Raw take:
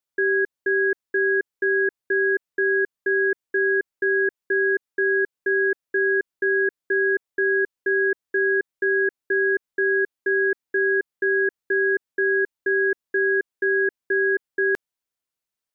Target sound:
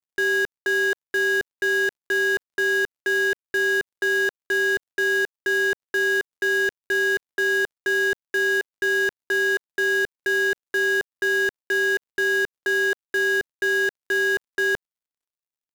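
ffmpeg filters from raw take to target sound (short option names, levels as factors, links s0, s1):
-filter_complex "[0:a]asplit=2[s0][s1];[s1]highpass=f=720:p=1,volume=79.4,asoftclip=type=tanh:threshold=0.2[s2];[s0][s2]amix=inputs=2:normalize=0,lowpass=f=1400:p=1,volume=0.501,acrusher=bits=5:mode=log:mix=0:aa=0.000001,aeval=exprs='sgn(val(0))*max(abs(val(0))-0.00119,0)':c=same"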